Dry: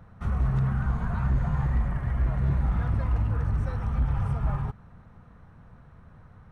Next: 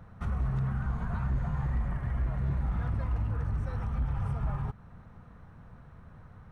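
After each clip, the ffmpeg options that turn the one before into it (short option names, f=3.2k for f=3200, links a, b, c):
-af "alimiter=limit=-24dB:level=0:latency=1:release=241"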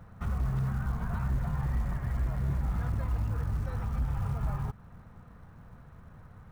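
-af "acrusher=bits=8:mode=log:mix=0:aa=0.000001"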